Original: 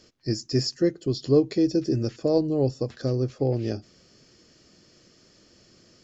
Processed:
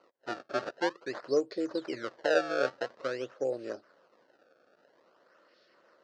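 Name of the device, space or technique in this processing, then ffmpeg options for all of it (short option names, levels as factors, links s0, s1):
circuit-bent sampling toy: -af "acrusher=samples=25:mix=1:aa=0.000001:lfo=1:lforange=40:lforate=0.49,highpass=540,equalizer=f=550:t=q:w=4:g=7,equalizer=f=820:t=q:w=4:g=-5,equalizer=f=1400:t=q:w=4:g=4,equalizer=f=2300:t=q:w=4:g=-9,equalizer=f=3400:t=q:w=4:g=-8,lowpass=f=4800:w=0.5412,lowpass=f=4800:w=1.3066,volume=0.668"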